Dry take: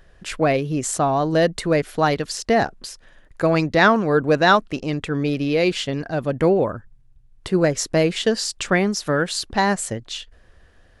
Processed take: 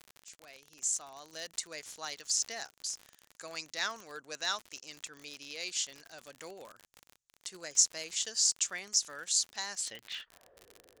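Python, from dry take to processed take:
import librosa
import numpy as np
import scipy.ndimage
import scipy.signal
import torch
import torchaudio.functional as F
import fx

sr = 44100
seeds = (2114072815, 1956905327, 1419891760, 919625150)

y = fx.fade_in_head(x, sr, length_s=1.79)
y = fx.filter_sweep_bandpass(y, sr, from_hz=6700.0, to_hz=420.0, start_s=9.71, end_s=10.62, q=3.4)
y = fx.dmg_crackle(y, sr, seeds[0], per_s=55.0, level_db=-41.0)
y = y * 10.0 ** (4.0 / 20.0)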